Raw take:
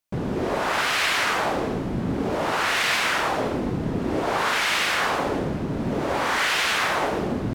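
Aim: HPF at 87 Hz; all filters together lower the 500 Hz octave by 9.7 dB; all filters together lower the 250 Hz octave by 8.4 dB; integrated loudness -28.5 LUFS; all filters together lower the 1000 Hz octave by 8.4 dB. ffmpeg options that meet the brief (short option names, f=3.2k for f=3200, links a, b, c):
-af "highpass=87,equalizer=f=250:t=o:g=-8.5,equalizer=f=500:t=o:g=-7.5,equalizer=f=1k:t=o:g=-8.5,volume=-1.5dB"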